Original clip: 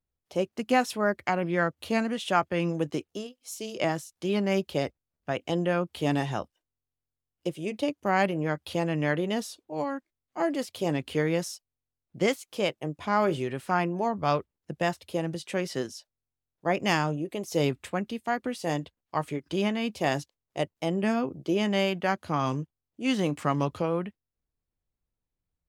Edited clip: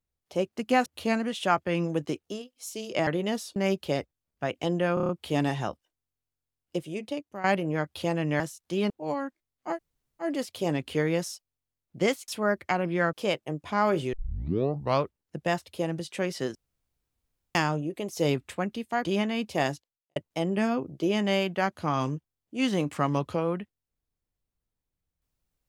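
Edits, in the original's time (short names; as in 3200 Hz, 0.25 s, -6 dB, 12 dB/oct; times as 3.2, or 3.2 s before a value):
0.86–1.71 move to 12.48
3.92–4.42 swap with 9.11–9.6
5.8 stutter 0.03 s, 6 plays
7.5–8.15 fade out linear, to -14.5 dB
10.44 insert room tone 0.50 s, crossfade 0.10 s
13.48 tape start 0.89 s
15.9–16.9 room tone
18.4–19.51 cut
20.12–20.62 fade out quadratic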